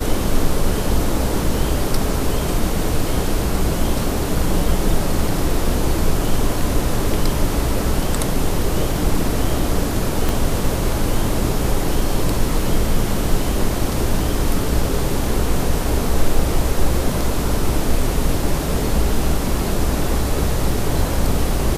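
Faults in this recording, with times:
0:10.29: click

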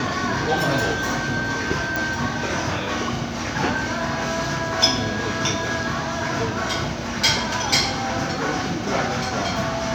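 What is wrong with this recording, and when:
0:01.96: click

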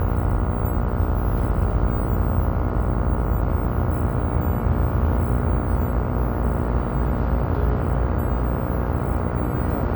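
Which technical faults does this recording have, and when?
mains buzz 60 Hz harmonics 24 −26 dBFS

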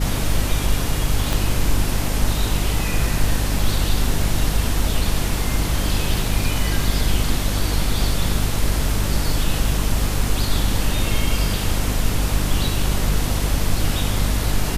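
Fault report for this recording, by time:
mains hum 50 Hz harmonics 6 −23 dBFS
0:01.33: click

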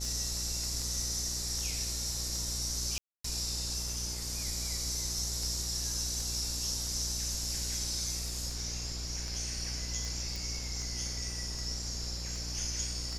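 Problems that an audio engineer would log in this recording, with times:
mains buzz 60 Hz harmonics 15 −40 dBFS
scratch tick 78 rpm
0:02.98–0:03.24: drop-out 264 ms
0:10.36: click

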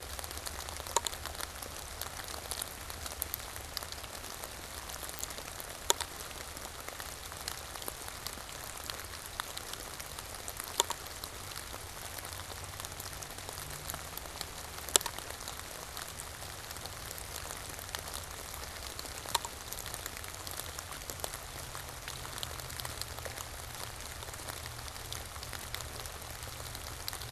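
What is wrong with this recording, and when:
0:05.19: click

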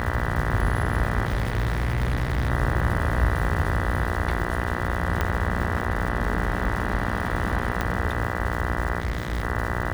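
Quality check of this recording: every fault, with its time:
mains buzz 60 Hz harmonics 33 −29 dBFS
surface crackle 370 per second −32 dBFS
0:01.25–0:02.50: clipping −19.5 dBFS
0:05.21: click −10 dBFS
0:07.81: click −11 dBFS
0:09.00–0:09.43: clipping −21.5 dBFS

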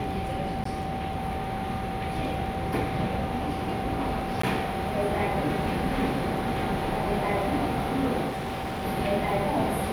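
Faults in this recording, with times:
surface crackle 10 per second −36 dBFS
whistle 770 Hz −33 dBFS
0:00.64–0:00.65: drop-out 14 ms
0:04.42–0:04.43: drop-out 14 ms
0:08.28–0:08.85: clipping −28.5 dBFS

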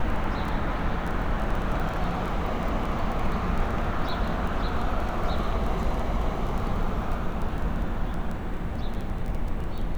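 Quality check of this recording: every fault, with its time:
surface crackle 12 per second −29 dBFS

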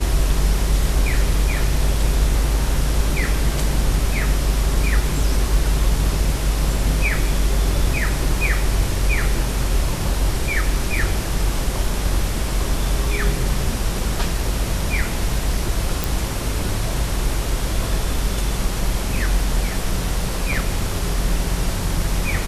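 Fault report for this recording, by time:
0:16.04: click

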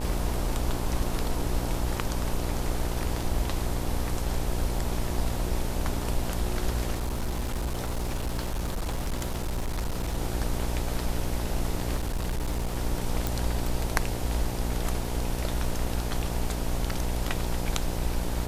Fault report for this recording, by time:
mains buzz 60 Hz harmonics 16 −32 dBFS
0:06.93–0:10.18: clipping −25.5 dBFS
0:11.96–0:12.77: clipping −25 dBFS
0:13.27: click

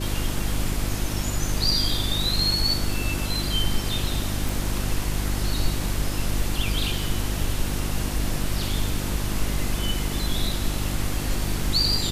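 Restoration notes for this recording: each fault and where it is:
mains hum 50 Hz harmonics 7 −29 dBFS
0:04.49: click

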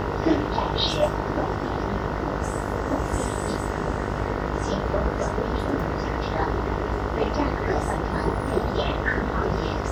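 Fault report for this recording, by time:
mains buzz 50 Hz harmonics 30 −30 dBFS

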